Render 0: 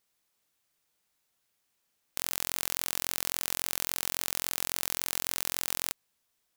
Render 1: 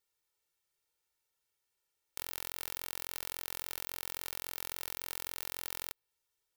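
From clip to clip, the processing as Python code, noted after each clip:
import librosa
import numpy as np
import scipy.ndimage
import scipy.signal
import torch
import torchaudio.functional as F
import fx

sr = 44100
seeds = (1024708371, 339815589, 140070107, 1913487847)

y = x + 0.8 * np.pad(x, (int(2.2 * sr / 1000.0), 0))[:len(x)]
y = fx.dynamic_eq(y, sr, hz=7300.0, q=1.1, threshold_db=-50.0, ratio=4.0, max_db=-6)
y = y * librosa.db_to_amplitude(-9.0)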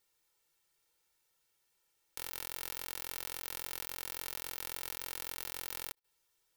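y = fx.level_steps(x, sr, step_db=17)
y = y + 0.3 * np.pad(y, (int(6.0 * sr / 1000.0), 0))[:len(y)]
y = y * librosa.db_to_amplitude(7.0)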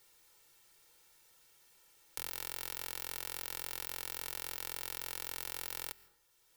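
y = fx.rev_plate(x, sr, seeds[0], rt60_s=0.67, hf_ratio=0.6, predelay_ms=105, drr_db=19.5)
y = fx.band_squash(y, sr, depth_pct=40)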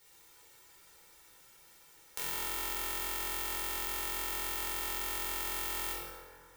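y = fx.echo_feedback(x, sr, ms=111, feedback_pct=59, wet_db=-17)
y = fx.rev_plate(y, sr, seeds[1], rt60_s=2.1, hf_ratio=0.4, predelay_ms=0, drr_db=-7.5)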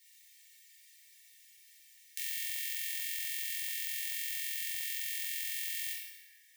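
y = fx.brickwall_highpass(x, sr, low_hz=1700.0)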